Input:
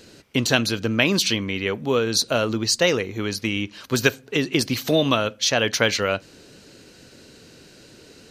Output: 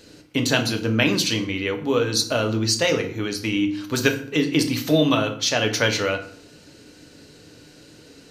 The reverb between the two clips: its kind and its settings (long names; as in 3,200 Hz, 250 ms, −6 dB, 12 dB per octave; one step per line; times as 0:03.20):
feedback delay network reverb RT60 0.56 s, low-frequency decay 1.45×, high-frequency decay 0.75×, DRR 4 dB
level −2 dB